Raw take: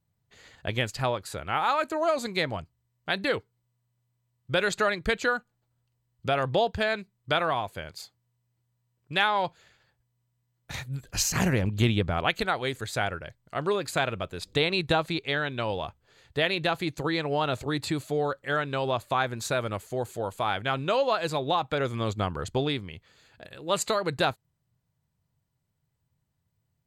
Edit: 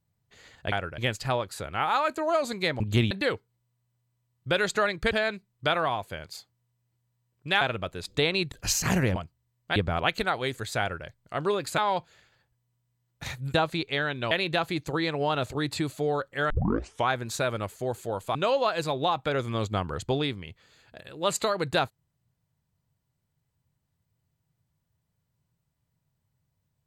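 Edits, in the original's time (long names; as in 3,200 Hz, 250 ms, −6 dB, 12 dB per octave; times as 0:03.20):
0:02.54–0:03.14: swap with 0:11.66–0:11.97
0:05.14–0:06.76: remove
0:09.26–0:11.02: swap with 0:13.99–0:14.90
0:13.01–0:13.27: duplicate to 0:00.72
0:15.67–0:16.42: remove
0:18.61: tape start 0.58 s
0:20.46–0:20.81: remove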